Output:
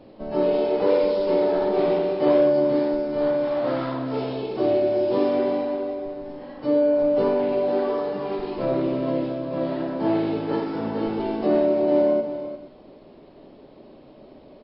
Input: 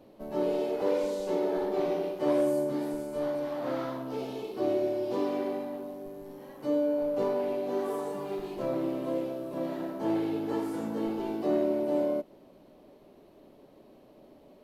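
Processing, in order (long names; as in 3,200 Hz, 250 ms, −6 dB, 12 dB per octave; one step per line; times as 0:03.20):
low-shelf EQ 150 Hz +3 dB
on a send: multi-tap delay 53/85/351/468 ms −10/−18/−10/−19 dB
on the sum: level +7 dB
MP3 24 kbit/s 12,000 Hz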